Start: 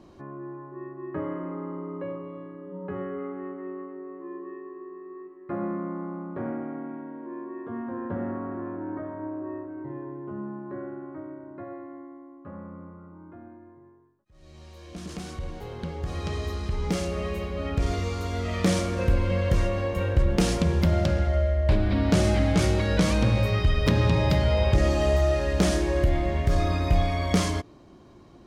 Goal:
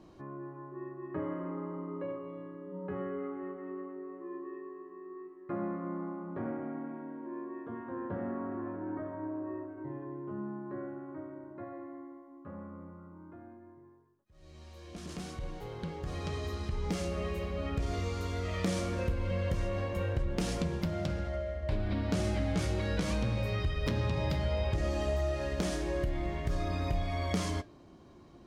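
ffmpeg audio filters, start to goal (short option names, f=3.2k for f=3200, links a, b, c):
-af "acompressor=threshold=-26dB:ratio=2.5,flanger=delay=6.3:depth=8.7:regen=-67:speed=0.19:shape=sinusoidal"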